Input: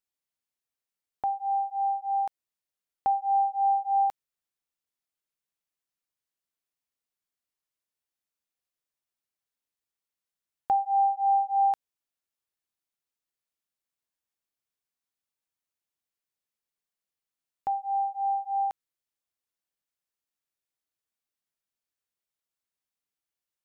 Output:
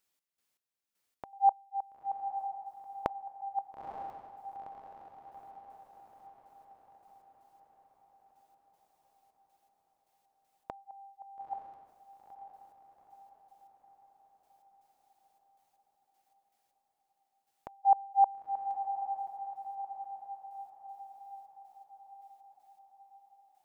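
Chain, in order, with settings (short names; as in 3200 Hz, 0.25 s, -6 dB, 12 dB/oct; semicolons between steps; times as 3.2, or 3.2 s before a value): low shelf 99 Hz -6.5 dB; flipped gate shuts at -24 dBFS, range -26 dB; step gate "x.x..x.x....x.xx" 79 bpm -12 dB; on a send: diffused feedback echo 0.923 s, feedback 56%, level -8.5 dB; on the sum: gain +9 dB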